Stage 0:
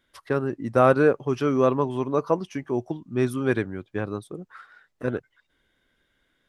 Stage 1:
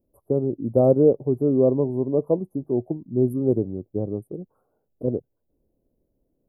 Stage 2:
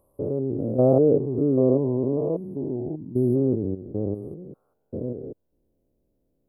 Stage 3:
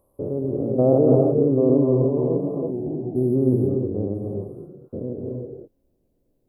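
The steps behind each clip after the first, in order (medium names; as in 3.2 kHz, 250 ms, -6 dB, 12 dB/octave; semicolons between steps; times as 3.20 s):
inverse Chebyshev band-stop 1.9–5.3 kHz, stop band 70 dB; trim +3 dB
spectrogram pixelated in time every 200 ms; trim +1.5 dB
gated-style reverb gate 360 ms rising, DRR 0 dB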